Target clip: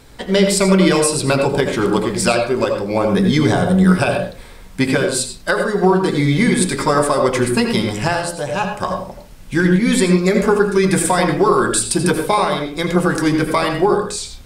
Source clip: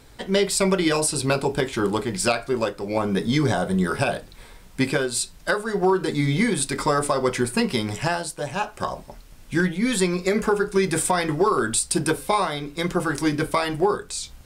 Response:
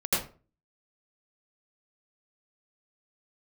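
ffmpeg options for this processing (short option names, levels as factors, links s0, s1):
-filter_complex "[0:a]asplit=2[s0][s1];[1:a]atrim=start_sample=2205,highshelf=f=8900:g=-9[s2];[s1][s2]afir=irnorm=-1:irlink=0,volume=0.211[s3];[s0][s3]amix=inputs=2:normalize=0,volume=1.5"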